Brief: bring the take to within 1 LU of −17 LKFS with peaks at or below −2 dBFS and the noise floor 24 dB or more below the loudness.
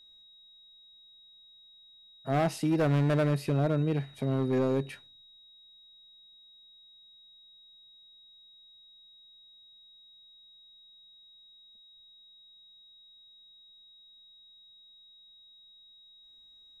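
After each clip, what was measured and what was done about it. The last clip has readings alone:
share of clipped samples 1.1%; peaks flattened at −21.5 dBFS; interfering tone 3,800 Hz; level of the tone −54 dBFS; integrated loudness −28.5 LKFS; sample peak −21.5 dBFS; target loudness −17.0 LKFS
→ clipped peaks rebuilt −21.5 dBFS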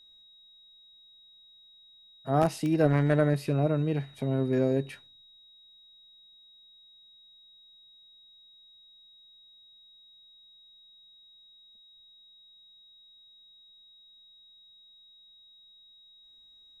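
share of clipped samples 0.0%; interfering tone 3,800 Hz; level of the tone −54 dBFS
→ notch filter 3,800 Hz, Q 30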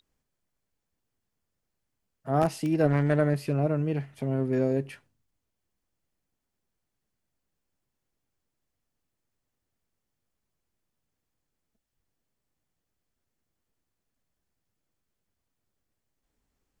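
interfering tone none found; integrated loudness −27.0 LKFS; sample peak −12.5 dBFS; target loudness −17.0 LKFS
→ level +10 dB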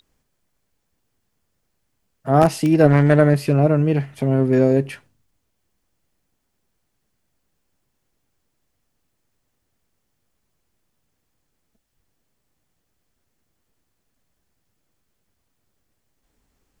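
integrated loudness −17.0 LKFS; sample peak −2.5 dBFS; background noise floor −73 dBFS

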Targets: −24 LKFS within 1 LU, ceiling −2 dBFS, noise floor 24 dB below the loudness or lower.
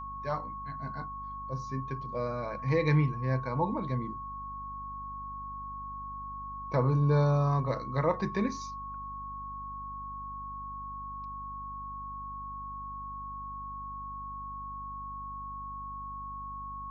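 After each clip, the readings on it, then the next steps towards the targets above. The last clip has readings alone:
mains hum 50 Hz; hum harmonics up to 250 Hz; level of the hum −44 dBFS; interfering tone 1,100 Hz; level of the tone −38 dBFS; integrated loudness −34.0 LKFS; sample peak −14.0 dBFS; target loudness −24.0 LKFS
→ hum removal 50 Hz, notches 5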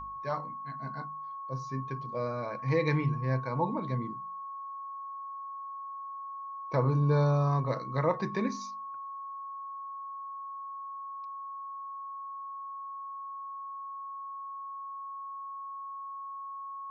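mains hum none found; interfering tone 1,100 Hz; level of the tone −38 dBFS
→ notch filter 1,100 Hz, Q 30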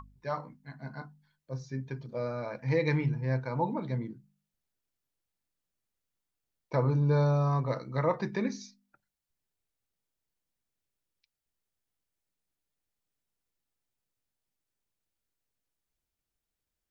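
interfering tone none found; integrated loudness −31.0 LKFS; sample peak −14.5 dBFS; target loudness −24.0 LKFS
→ level +7 dB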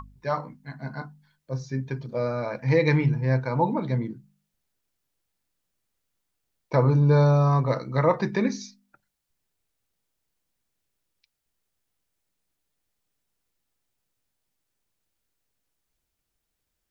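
integrated loudness −24.0 LKFS; sample peak −7.5 dBFS; background noise floor −80 dBFS

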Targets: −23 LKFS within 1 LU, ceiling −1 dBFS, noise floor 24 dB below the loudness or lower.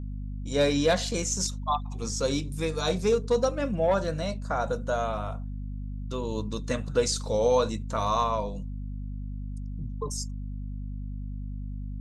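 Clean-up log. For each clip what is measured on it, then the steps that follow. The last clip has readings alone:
mains hum 50 Hz; hum harmonics up to 250 Hz; level of the hum −32 dBFS; integrated loudness −29.0 LKFS; sample peak −11.5 dBFS; target loudness −23.0 LKFS
→ hum removal 50 Hz, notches 5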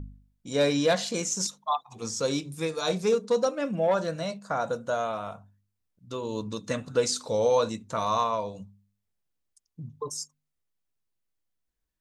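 mains hum none found; integrated loudness −28.5 LKFS; sample peak −12.0 dBFS; target loudness −23.0 LKFS
→ level +5.5 dB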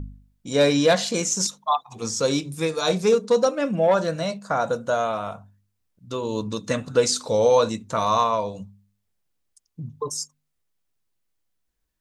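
integrated loudness −23.0 LKFS; sample peak −6.5 dBFS; background noise floor −76 dBFS

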